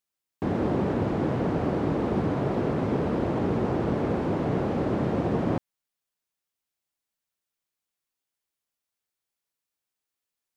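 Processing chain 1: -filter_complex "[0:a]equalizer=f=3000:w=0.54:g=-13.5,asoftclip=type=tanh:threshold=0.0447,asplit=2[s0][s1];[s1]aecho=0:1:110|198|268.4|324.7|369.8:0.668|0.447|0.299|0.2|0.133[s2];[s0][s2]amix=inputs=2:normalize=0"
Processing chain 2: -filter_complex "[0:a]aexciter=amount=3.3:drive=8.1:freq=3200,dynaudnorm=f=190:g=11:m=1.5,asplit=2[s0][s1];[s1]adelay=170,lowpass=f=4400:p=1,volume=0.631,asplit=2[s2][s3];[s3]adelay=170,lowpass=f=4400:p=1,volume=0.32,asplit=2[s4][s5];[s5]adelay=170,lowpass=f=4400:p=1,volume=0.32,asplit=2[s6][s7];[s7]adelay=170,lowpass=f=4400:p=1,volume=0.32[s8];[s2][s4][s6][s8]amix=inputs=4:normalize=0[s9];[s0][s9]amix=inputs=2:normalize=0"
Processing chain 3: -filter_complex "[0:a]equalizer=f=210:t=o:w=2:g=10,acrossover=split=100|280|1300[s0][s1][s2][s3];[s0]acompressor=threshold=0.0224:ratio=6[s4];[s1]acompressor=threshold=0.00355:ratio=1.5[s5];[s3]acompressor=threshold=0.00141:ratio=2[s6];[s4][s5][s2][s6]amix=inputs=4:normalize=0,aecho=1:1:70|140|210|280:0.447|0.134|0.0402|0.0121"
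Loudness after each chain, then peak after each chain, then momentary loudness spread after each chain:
-29.5 LUFS, -22.5 LUFS, -23.0 LUFS; -19.0 dBFS, -9.0 dBFS, -8.5 dBFS; 4 LU, 5 LU, 2 LU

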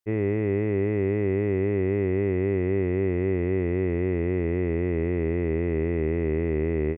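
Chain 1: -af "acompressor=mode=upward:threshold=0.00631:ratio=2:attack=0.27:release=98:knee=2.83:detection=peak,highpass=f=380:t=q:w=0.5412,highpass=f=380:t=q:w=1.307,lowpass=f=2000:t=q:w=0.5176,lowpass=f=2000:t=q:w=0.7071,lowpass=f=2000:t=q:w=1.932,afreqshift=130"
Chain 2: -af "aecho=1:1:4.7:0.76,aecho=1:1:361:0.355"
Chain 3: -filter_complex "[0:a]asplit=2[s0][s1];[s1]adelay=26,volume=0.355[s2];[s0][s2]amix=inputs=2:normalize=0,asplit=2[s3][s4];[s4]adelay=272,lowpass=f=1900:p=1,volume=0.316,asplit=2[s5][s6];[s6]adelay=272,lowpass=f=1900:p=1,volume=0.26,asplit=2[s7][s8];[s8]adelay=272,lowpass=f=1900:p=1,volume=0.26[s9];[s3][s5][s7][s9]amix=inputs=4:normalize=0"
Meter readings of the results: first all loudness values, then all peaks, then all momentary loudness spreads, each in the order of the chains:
-30.5 LUFS, -23.0 LUFS, -25.0 LUFS; -21.5 dBFS, -12.0 dBFS, -12.0 dBFS; 2 LU, 2 LU, 2 LU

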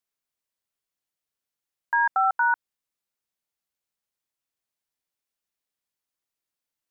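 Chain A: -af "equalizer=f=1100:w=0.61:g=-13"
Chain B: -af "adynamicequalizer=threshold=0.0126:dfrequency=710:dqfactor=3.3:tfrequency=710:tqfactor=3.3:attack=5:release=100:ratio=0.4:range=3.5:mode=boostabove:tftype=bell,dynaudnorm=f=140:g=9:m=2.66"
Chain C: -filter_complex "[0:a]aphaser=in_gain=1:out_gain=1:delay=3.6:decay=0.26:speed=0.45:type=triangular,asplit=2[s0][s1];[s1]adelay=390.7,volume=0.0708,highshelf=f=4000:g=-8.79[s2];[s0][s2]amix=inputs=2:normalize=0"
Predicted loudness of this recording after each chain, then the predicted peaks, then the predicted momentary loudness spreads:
-35.0 LUFS, -14.5 LUFS, -23.0 LUFS; -25.5 dBFS, -3.5 dBFS, -12.0 dBFS; 5 LU, 7 LU, 7 LU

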